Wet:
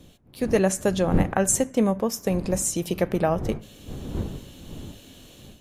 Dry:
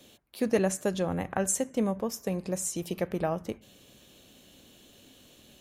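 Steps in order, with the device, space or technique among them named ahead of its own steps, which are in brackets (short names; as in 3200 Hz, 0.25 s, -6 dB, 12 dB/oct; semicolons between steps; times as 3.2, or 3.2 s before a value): smartphone video outdoors (wind noise 210 Hz -40 dBFS; AGC gain up to 9 dB; gain -2 dB; AAC 96 kbps 32000 Hz)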